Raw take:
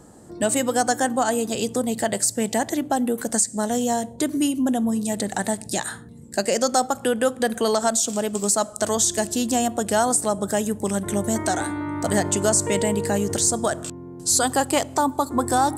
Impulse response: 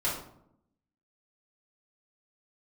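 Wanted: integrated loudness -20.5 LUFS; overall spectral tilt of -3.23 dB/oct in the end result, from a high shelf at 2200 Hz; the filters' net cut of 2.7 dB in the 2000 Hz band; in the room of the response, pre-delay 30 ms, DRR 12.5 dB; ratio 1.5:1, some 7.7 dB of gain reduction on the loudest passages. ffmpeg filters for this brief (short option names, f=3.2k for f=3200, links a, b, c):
-filter_complex "[0:a]equalizer=f=2k:t=o:g=-8.5,highshelf=f=2.2k:g=9,acompressor=threshold=-30dB:ratio=1.5,asplit=2[a][b];[1:a]atrim=start_sample=2205,adelay=30[c];[b][c]afir=irnorm=-1:irlink=0,volume=-20.5dB[d];[a][d]amix=inputs=2:normalize=0,volume=3dB"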